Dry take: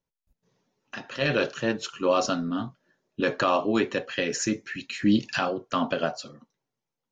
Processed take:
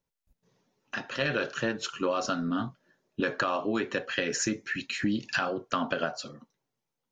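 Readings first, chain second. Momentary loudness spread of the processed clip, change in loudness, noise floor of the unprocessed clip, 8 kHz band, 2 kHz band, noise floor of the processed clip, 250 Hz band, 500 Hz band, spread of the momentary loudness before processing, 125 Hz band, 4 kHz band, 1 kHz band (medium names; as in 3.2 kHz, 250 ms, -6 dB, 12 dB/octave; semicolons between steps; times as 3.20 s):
8 LU, -4.0 dB, under -85 dBFS, no reading, -0.5 dB, under -85 dBFS, -5.0 dB, -5.0 dB, 15 LU, -4.0 dB, -2.5 dB, -4.0 dB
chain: dynamic bell 1.5 kHz, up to +6 dB, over -43 dBFS, Q 2.5; compression 6:1, threshold -26 dBFS, peak gain reduction 10 dB; trim +1 dB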